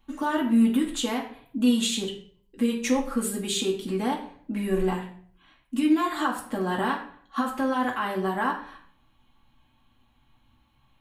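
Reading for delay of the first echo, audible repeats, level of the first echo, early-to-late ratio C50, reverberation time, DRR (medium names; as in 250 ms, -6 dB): no echo, no echo, no echo, 8.0 dB, 0.50 s, -2.0 dB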